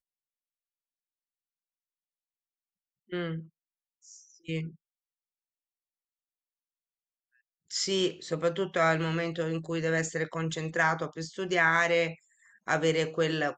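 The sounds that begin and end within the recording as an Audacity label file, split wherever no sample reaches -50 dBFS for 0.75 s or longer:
3.100000	4.750000	sound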